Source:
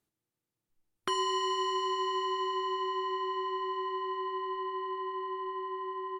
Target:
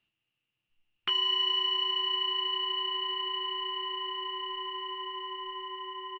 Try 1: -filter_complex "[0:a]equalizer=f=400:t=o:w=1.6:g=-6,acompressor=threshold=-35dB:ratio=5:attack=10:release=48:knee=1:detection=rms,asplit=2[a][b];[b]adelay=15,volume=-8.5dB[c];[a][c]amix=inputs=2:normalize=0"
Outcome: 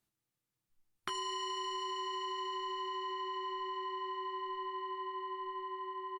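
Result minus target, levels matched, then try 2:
2000 Hz band +4.0 dB
-filter_complex "[0:a]equalizer=f=400:t=o:w=1.6:g=-6,acompressor=threshold=-35dB:ratio=5:attack=10:release=48:knee=1:detection=rms,lowpass=f=2.8k:t=q:w=14,asplit=2[a][b];[b]adelay=15,volume=-8.5dB[c];[a][c]amix=inputs=2:normalize=0"

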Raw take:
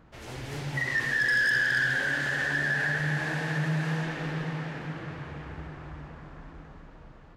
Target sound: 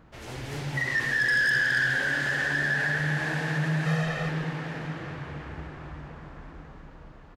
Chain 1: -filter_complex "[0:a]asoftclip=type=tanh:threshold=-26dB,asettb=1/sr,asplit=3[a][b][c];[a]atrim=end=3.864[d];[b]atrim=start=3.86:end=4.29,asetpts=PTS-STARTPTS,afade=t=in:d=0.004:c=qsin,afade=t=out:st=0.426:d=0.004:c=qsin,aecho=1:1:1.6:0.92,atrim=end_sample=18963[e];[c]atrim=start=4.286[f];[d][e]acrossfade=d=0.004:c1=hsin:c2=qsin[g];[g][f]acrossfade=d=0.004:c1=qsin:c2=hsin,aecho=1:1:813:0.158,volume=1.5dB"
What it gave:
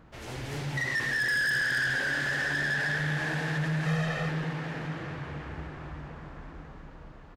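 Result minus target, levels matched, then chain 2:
soft clip: distortion +17 dB
-filter_complex "[0:a]asoftclip=type=tanh:threshold=-15dB,asettb=1/sr,asplit=3[a][b][c];[a]atrim=end=3.864[d];[b]atrim=start=3.86:end=4.29,asetpts=PTS-STARTPTS,afade=t=in:d=0.004:c=qsin,afade=t=out:st=0.426:d=0.004:c=qsin,aecho=1:1:1.6:0.92,atrim=end_sample=18963[e];[c]atrim=start=4.286[f];[d][e]acrossfade=d=0.004:c1=hsin:c2=qsin[g];[g][f]acrossfade=d=0.004:c1=qsin:c2=hsin,aecho=1:1:813:0.158,volume=1.5dB"

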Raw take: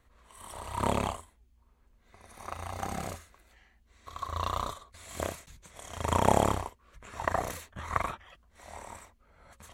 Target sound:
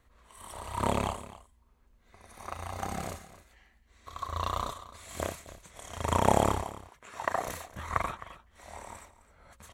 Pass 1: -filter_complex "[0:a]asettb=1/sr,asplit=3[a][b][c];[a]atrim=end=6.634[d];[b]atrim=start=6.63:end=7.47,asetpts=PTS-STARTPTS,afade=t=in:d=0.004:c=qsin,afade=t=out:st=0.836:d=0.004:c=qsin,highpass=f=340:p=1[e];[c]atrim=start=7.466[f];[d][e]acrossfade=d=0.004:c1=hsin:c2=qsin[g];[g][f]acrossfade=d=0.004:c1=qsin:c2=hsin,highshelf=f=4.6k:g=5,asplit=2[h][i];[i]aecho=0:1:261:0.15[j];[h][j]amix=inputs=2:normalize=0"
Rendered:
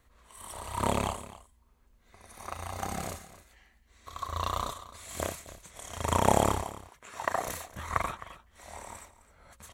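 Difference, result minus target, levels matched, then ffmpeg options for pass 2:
8000 Hz band +3.5 dB
-filter_complex "[0:a]asettb=1/sr,asplit=3[a][b][c];[a]atrim=end=6.634[d];[b]atrim=start=6.63:end=7.47,asetpts=PTS-STARTPTS,afade=t=in:d=0.004:c=qsin,afade=t=out:st=0.836:d=0.004:c=qsin,highpass=f=340:p=1[e];[c]atrim=start=7.466[f];[d][e]acrossfade=d=0.004:c1=hsin:c2=qsin[g];[g][f]acrossfade=d=0.004:c1=qsin:c2=hsin,asplit=2[h][i];[i]aecho=0:1:261:0.15[j];[h][j]amix=inputs=2:normalize=0"

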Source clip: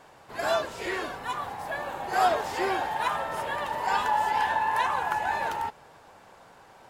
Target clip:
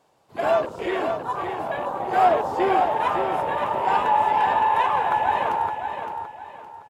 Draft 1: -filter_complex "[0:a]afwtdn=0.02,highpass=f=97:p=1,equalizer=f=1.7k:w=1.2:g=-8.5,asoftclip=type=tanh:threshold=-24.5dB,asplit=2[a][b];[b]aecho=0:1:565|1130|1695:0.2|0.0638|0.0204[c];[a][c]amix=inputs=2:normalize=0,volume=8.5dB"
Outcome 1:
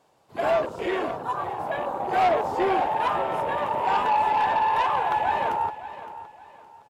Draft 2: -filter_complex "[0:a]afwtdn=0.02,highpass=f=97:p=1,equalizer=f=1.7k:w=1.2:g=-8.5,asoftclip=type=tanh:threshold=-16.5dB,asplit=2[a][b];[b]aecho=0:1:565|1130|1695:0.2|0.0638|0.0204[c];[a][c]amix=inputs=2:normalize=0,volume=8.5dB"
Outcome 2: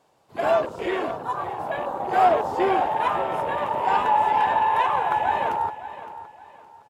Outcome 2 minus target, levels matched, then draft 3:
echo-to-direct -7 dB
-filter_complex "[0:a]afwtdn=0.02,highpass=f=97:p=1,equalizer=f=1.7k:w=1.2:g=-8.5,asoftclip=type=tanh:threshold=-16.5dB,asplit=2[a][b];[b]aecho=0:1:565|1130|1695|2260:0.447|0.143|0.0457|0.0146[c];[a][c]amix=inputs=2:normalize=0,volume=8.5dB"

